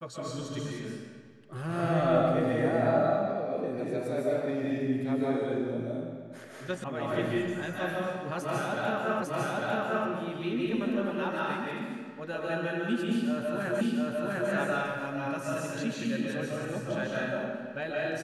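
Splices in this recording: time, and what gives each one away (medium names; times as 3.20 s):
6.84 s: sound stops dead
9.22 s: repeat of the last 0.85 s
13.81 s: repeat of the last 0.7 s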